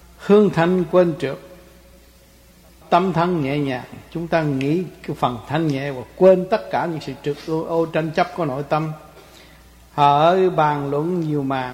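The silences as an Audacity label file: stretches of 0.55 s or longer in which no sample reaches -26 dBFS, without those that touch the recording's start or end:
1.350000	2.920000	silence
8.930000	9.980000	silence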